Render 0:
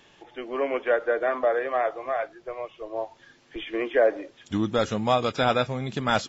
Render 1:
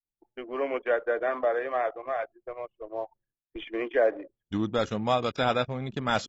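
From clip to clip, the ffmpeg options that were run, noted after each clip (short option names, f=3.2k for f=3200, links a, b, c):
-af "agate=range=-33dB:threshold=-44dB:ratio=3:detection=peak,anlmdn=1.58,volume=-3dB"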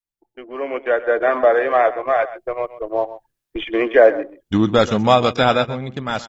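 -af "dynaudnorm=f=290:g=7:m=14dB,aecho=1:1:129:0.178,volume=1dB"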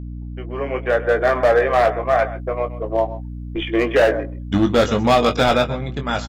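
-filter_complex "[0:a]volume=10.5dB,asoftclip=hard,volume=-10.5dB,asplit=2[a][b];[b]adelay=21,volume=-7dB[c];[a][c]amix=inputs=2:normalize=0,aeval=exprs='val(0)+0.0355*(sin(2*PI*60*n/s)+sin(2*PI*2*60*n/s)/2+sin(2*PI*3*60*n/s)/3+sin(2*PI*4*60*n/s)/4+sin(2*PI*5*60*n/s)/5)':c=same"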